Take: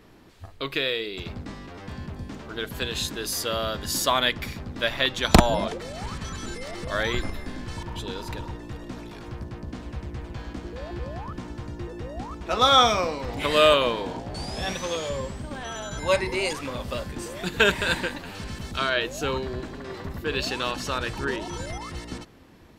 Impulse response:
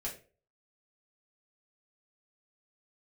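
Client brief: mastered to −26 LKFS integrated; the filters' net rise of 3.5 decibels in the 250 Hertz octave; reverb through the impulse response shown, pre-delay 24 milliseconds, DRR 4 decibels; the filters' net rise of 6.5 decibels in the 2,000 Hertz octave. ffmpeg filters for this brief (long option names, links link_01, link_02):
-filter_complex "[0:a]equalizer=frequency=250:width_type=o:gain=4.5,equalizer=frequency=2000:width_type=o:gain=8.5,asplit=2[link_01][link_02];[1:a]atrim=start_sample=2205,adelay=24[link_03];[link_02][link_03]afir=irnorm=-1:irlink=0,volume=-4.5dB[link_04];[link_01][link_04]amix=inputs=2:normalize=0,volume=-4.5dB"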